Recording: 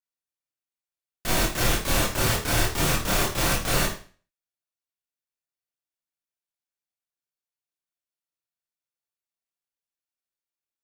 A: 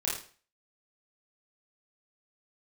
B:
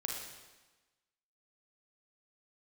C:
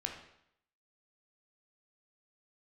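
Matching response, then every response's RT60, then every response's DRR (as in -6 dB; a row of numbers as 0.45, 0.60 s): A; 0.40, 1.2, 0.75 s; -6.5, -1.0, 2.0 dB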